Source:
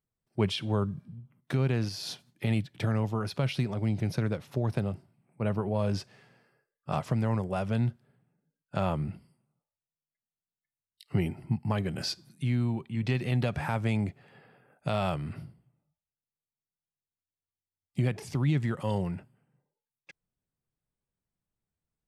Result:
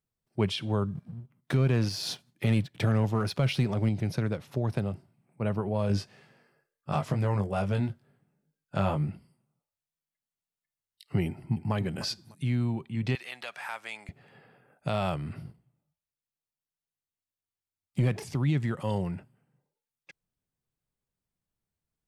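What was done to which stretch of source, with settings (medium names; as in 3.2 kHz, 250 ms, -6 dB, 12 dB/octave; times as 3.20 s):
0.95–3.89 s: waveshaping leveller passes 1
5.88–9.10 s: doubling 20 ms -4.5 dB
11.26–11.74 s: echo throw 300 ms, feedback 20%, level -12 dB
13.15–14.09 s: high-pass 1.1 kHz
15.45–18.24 s: waveshaping leveller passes 1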